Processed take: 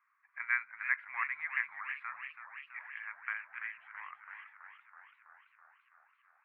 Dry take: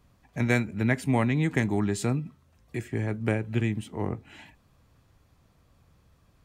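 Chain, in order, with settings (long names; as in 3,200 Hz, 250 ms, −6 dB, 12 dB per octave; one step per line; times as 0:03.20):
elliptic band-pass filter 1,100–2,200 Hz, stop band 60 dB
feedback echo with a swinging delay time 331 ms, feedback 69%, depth 122 cents, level −10 dB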